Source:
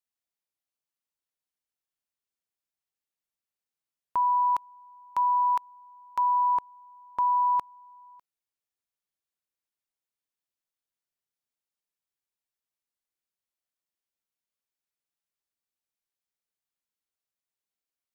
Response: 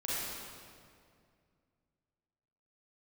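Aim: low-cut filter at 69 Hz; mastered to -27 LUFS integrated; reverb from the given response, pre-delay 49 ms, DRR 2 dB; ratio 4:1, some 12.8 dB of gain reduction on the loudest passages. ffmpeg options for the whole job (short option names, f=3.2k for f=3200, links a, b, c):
-filter_complex "[0:a]highpass=69,acompressor=threshold=-38dB:ratio=4,asplit=2[a][b];[1:a]atrim=start_sample=2205,adelay=49[c];[b][c]afir=irnorm=-1:irlink=0,volume=-7.5dB[d];[a][d]amix=inputs=2:normalize=0,volume=11.5dB"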